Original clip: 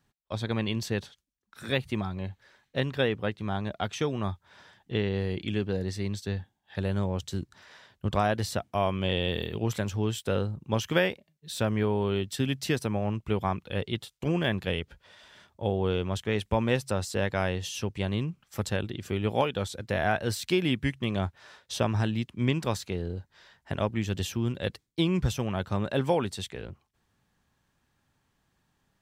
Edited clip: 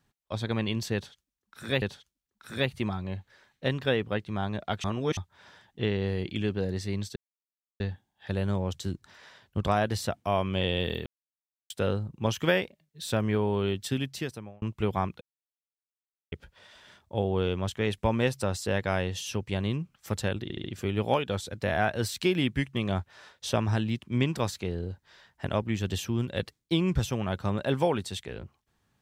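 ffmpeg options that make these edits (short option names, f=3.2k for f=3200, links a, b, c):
-filter_complex "[0:a]asplit=13[a][b][c][d][e][f][g][h][i][j][k][l][m];[a]atrim=end=1.822[n];[b]atrim=start=0.938:end=3.962[o];[c]atrim=start=3.958:end=4.292,asetpts=PTS-STARTPTS,areverse[p];[d]atrim=start=4.288:end=6.28,asetpts=PTS-STARTPTS,afade=t=out:st=1.988:d=0.004:c=hsin,apad=pad_dur=0.64[q];[e]atrim=start=6.28:end=9.54,asetpts=PTS-STARTPTS,afade=t=in:d=0.004:c=hsin,afade=t=out:st=3.256:d=0.004:c=hsin[r];[f]atrim=start=9.54:end=10.18,asetpts=PTS-STARTPTS,volume=0[s];[g]atrim=start=10.18:end=13.1,asetpts=PTS-STARTPTS,afade=t=in:d=0.004:c=hsin,afade=t=out:st=2.14:d=0.78[t];[h]atrim=start=13.1:end=13.69,asetpts=PTS-STARTPTS,afade=t=in:d=0.004:c=hsin,afade=t=out:st=0.586:d=0.004:c=hsin[u];[i]atrim=start=13.69:end=14.8,asetpts=PTS-STARTPTS,volume=0[v];[j]atrim=start=14.8:end=18.982,asetpts=PTS-STARTPTS,afade=t=in:d=0.004:c=hsin[w];[k]atrim=start=18.908:end=18.982[x];[l]atrim=start=18.908:end=18.982[y];[m]atrim=start=18.908[z];[n][o]acrossfade=d=0.004:c1=hsin:c2=hsin[aa];[aa][p]acrossfade=d=0.004:c1=hsin:c2=hsin[ab];[q][r][s][t][u][v][w]concat=n=7:v=0:a=1[ac];[ab][ac]acrossfade=d=0.004:c1=hsin:c2=hsin[ad];[ad][x]acrossfade=d=0.004:c1=hsin:c2=hsin[ae];[ae][y]acrossfade=d=0.004:c1=hsin:c2=hsin[af];[af][z]acrossfade=d=0.004:c1=hsin:c2=hsin"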